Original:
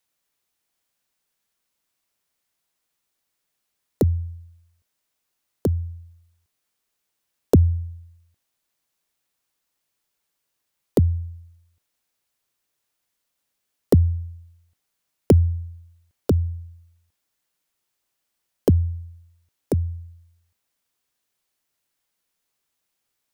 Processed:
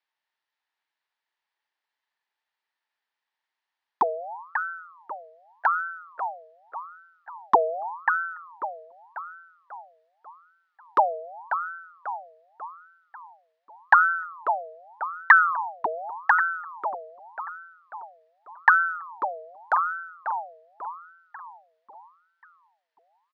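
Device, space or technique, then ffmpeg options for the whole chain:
voice changer toy: -filter_complex "[0:a]asplit=2[link_01][link_02];[link_02]adelay=542,lowpass=frequency=1300:poles=1,volume=-8.5dB,asplit=2[link_03][link_04];[link_04]adelay=542,lowpass=frequency=1300:poles=1,volume=0.5,asplit=2[link_05][link_06];[link_06]adelay=542,lowpass=frequency=1300:poles=1,volume=0.5,asplit=2[link_07][link_08];[link_08]adelay=542,lowpass=frequency=1300:poles=1,volume=0.5,asplit=2[link_09][link_10];[link_10]adelay=542,lowpass=frequency=1300:poles=1,volume=0.5,asplit=2[link_11][link_12];[link_12]adelay=542,lowpass=frequency=1300:poles=1,volume=0.5[link_13];[link_01][link_03][link_05][link_07][link_09][link_11][link_13]amix=inputs=7:normalize=0,aeval=exprs='val(0)*sin(2*PI*1000*n/s+1000*0.45/0.85*sin(2*PI*0.85*n/s))':channel_layout=same,highpass=520,equalizer=frequency=530:width_type=q:width=4:gain=-5,equalizer=frequency=900:width_type=q:width=4:gain=9,equalizer=frequency=1800:width_type=q:width=4:gain=9,lowpass=frequency=4400:width=0.5412,lowpass=frequency=4400:width=1.3066,volume=-2dB"

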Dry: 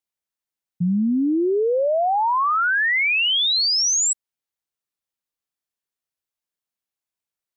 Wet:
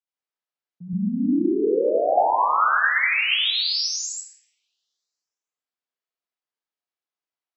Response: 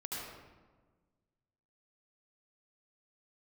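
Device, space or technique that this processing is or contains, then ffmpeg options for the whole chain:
supermarket ceiling speaker: -filter_complex "[0:a]highpass=290,lowpass=5000[link_01];[1:a]atrim=start_sample=2205[link_02];[link_01][link_02]afir=irnorm=-1:irlink=0,asettb=1/sr,asplit=3[link_03][link_04][link_05];[link_03]atrim=end=0.934[link_06];[link_04]atrim=start=0.93:end=1.51,asetpts=PTS-STARTPTS,afade=type=in:duration=0.004:curve=qsin,afade=type=out:start_time=0.576:duration=0.004:curve=qsin,lowshelf=frequency=160:gain=10.5[link_07];[link_05]atrim=start=1.506[link_08];[link_06][link_07]acrossfade=duration=0.004:curve1=hsin:curve2=qsin[link_09];[link_09][link_08]acrossfade=duration=0.004:curve1=qsin:curve2=hsin,volume=-2dB"

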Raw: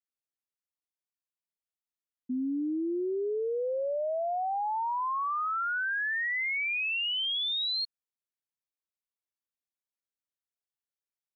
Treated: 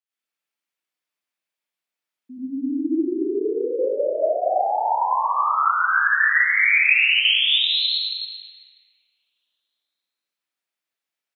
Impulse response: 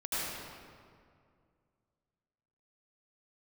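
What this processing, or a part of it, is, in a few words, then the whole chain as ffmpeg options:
stadium PA: -filter_complex "[0:a]highpass=200,equalizer=frequency=2500:width_type=o:width=1.6:gain=7,aecho=1:1:218.7|274.1:0.316|0.316[link_01];[1:a]atrim=start_sample=2205[link_02];[link_01][link_02]afir=irnorm=-1:irlink=0"

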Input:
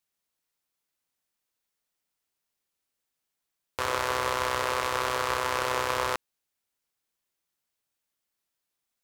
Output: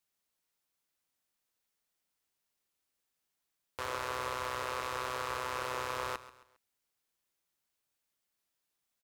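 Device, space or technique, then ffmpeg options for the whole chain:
clipper into limiter: -af "asoftclip=type=hard:threshold=-14dB,alimiter=limit=-22dB:level=0:latency=1,aecho=1:1:135|270|405:0.158|0.0602|0.0229,volume=-1dB"

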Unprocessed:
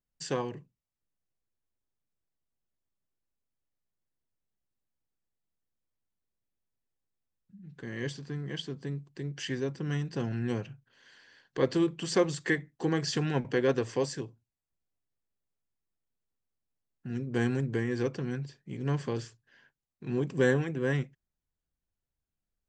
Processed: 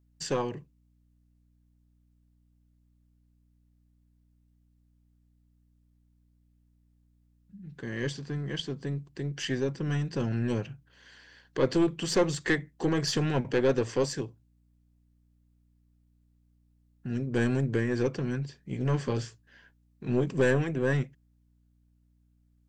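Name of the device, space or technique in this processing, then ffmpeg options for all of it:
valve amplifier with mains hum: -filter_complex "[0:a]asettb=1/sr,asplit=3[link_01][link_02][link_03];[link_01]atrim=end=18.604[link_04];[link_02]atrim=start=18.6:end=20.3,asetpts=PTS-STARTPTS,afade=type=in:duration=0.004:curve=qsin,afade=type=out:start_time=1.696:duration=0.004:curve=qsin,asplit=2[link_05][link_06];[link_06]adelay=16,volume=-8dB[link_07];[link_05][link_07]amix=inputs=2:normalize=0,atrim=end_sample=74970[link_08];[link_03]atrim=start=20.296[link_09];[link_04][link_08]acrossfade=duration=0.004:curve1=hsin:curve2=qsin[link_10];[link_10][link_09]acrossfade=duration=0.004:curve1=qsin:curve2=hsin,aeval=exprs='(tanh(11.2*val(0)+0.35)-tanh(0.35))/11.2':channel_layout=same,aeval=exprs='val(0)+0.000355*(sin(2*PI*60*n/s)+sin(2*PI*2*60*n/s)/2+sin(2*PI*3*60*n/s)/3+sin(2*PI*4*60*n/s)/4+sin(2*PI*5*60*n/s)/5)':channel_layout=same,volume=4.5dB"

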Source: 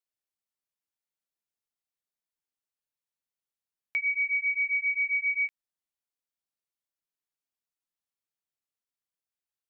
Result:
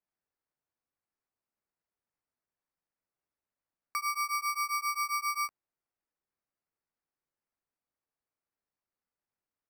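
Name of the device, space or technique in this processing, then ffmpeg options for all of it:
crushed at another speed: -af "asetrate=35280,aresample=44100,acrusher=samples=16:mix=1:aa=0.000001,asetrate=55125,aresample=44100,volume=-4.5dB"

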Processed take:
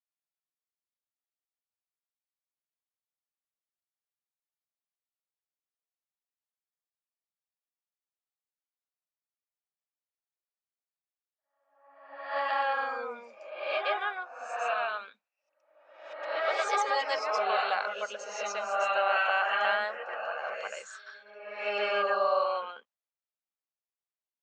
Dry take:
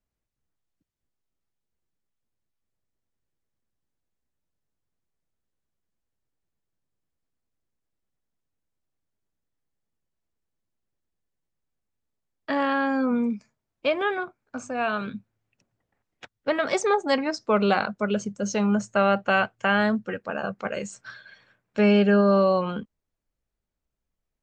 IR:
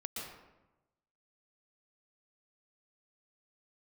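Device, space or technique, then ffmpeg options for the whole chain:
ghost voice: -filter_complex "[0:a]agate=range=-10dB:threshold=-47dB:ratio=16:detection=peak,areverse[link_01];[1:a]atrim=start_sample=2205[link_02];[link_01][link_02]afir=irnorm=-1:irlink=0,areverse,highpass=frequency=630:width=0.5412,highpass=frequency=630:width=1.3066,lowpass=7200,volume=-1.5dB"

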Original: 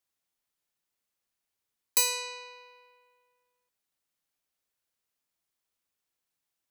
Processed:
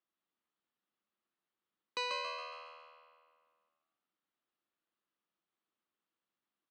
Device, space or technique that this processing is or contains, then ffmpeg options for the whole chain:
frequency-shifting delay pedal into a guitar cabinet: -filter_complex "[0:a]asplit=7[link_01][link_02][link_03][link_04][link_05][link_06][link_07];[link_02]adelay=138,afreqshift=79,volume=-4.5dB[link_08];[link_03]adelay=276,afreqshift=158,volume=-11.4dB[link_09];[link_04]adelay=414,afreqshift=237,volume=-18.4dB[link_10];[link_05]adelay=552,afreqshift=316,volume=-25.3dB[link_11];[link_06]adelay=690,afreqshift=395,volume=-32.2dB[link_12];[link_07]adelay=828,afreqshift=474,volume=-39.2dB[link_13];[link_01][link_08][link_09][link_10][link_11][link_12][link_13]amix=inputs=7:normalize=0,highpass=92,equalizer=frequency=110:width_type=q:width=4:gain=-10,equalizer=frequency=210:width_type=q:width=4:gain=7,equalizer=frequency=330:width_type=q:width=4:gain=8,equalizer=frequency=1200:width_type=q:width=4:gain=6,equalizer=frequency=2300:width_type=q:width=4:gain=-4,lowpass=frequency=3600:width=0.5412,lowpass=frequency=3600:width=1.3066,volume=-4dB"

